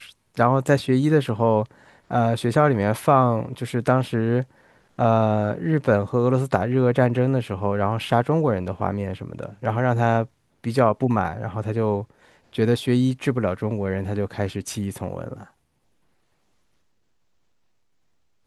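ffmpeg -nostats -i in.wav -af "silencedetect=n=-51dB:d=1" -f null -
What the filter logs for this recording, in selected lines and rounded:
silence_start: 15.51
silence_end: 18.46 | silence_duration: 2.95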